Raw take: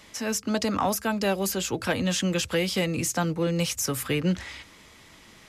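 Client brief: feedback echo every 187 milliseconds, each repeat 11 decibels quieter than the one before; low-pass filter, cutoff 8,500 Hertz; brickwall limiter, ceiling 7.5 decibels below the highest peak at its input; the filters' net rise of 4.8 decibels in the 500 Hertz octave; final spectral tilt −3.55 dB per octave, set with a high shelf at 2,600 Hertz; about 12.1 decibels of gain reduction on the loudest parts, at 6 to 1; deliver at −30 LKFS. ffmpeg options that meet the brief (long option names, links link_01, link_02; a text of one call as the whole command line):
ffmpeg -i in.wav -af "lowpass=8500,equalizer=frequency=500:width_type=o:gain=5.5,highshelf=frequency=2600:gain=4,acompressor=threshold=-31dB:ratio=6,alimiter=level_in=2.5dB:limit=-24dB:level=0:latency=1,volume=-2.5dB,aecho=1:1:187|374|561:0.282|0.0789|0.0221,volume=5.5dB" out.wav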